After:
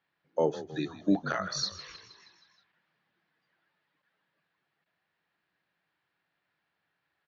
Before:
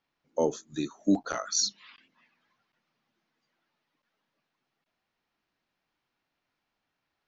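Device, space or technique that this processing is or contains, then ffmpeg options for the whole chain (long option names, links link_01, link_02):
frequency-shifting delay pedal into a guitar cabinet: -filter_complex "[0:a]asplit=7[link_01][link_02][link_03][link_04][link_05][link_06][link_07];[link_02]adelay=158,afreqshift=-52,volume=-14.5dB[link_08];[link_03]adelay=316,afreqshift=-104,volume=-19.2dB[link_09];[link_04]adelay=474,afreqshift=-156,volume=-24dB[link_10];[link_05]adelay=632,afreqshift=-208,volume=-28.7dB[link_11];[link_06]adelay=790,afreqshift=-260,volume=-33.4dB[link_12];[link_07]adelay=948,afreqshift=-312,volume=-38.2dB[link_13];[link_01][link_08][link_09][link_10][link_11][link_12][link_13]amix=inputs=7:normalize=0,highpass=84,equalizer=frequency=170:width_type=q:width=4:gain=5,equalizer=frequency=240:width_type=q:width=4:gain=-8,equalizer=frequency=1700:width_type=q:width=4:gain=8,lowpass=frequency=4500:width=0.5412,lowpass=frequency=4500:width=1.3066"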